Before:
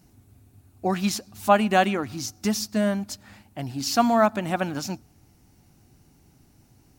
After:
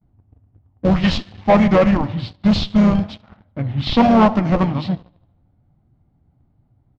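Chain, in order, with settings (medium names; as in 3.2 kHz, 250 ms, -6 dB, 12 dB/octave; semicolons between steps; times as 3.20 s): gate with hold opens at -51 dBFS; level-controlled noise filter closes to 1.5 kHz, open at -19.5 dBFS; formant shift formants -5 st; on a send: tape echo 76 ms, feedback 63%, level -18 dB, low-pass 5.9 kHz; on the sum: harmony voices -3 st -10 dB; flange 1.2 Hz, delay 4.5 ms, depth 8 ms, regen -67%; in parallel at -5 dB: Schmitt trigger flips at -25.5 dBFS; on the sum: fifteen-band graphic EQ 400 Hz -7 dB, 1.6 kHz -7 dB, 10 kHz -9 dB; waveshaping leveller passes 2; distance through air 170 m; trim +7.5 dB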